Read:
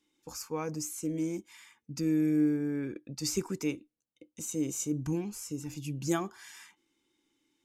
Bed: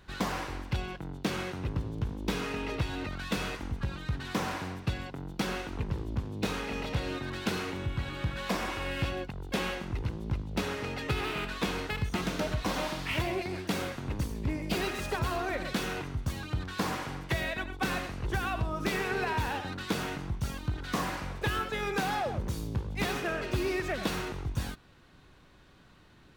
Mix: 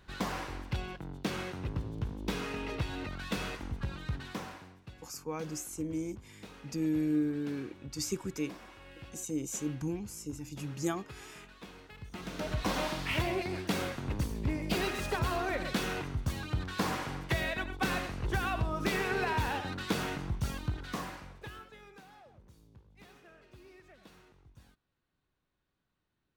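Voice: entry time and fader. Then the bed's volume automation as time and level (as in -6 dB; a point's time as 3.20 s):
4.75 s, -3.0 dB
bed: 4.15 s -3 dB
4.78 s -18 dB
11.92 s -18 dB
12.61 s -0.5 dB
20.62 s -0.5 dB
22.07 s -25 dB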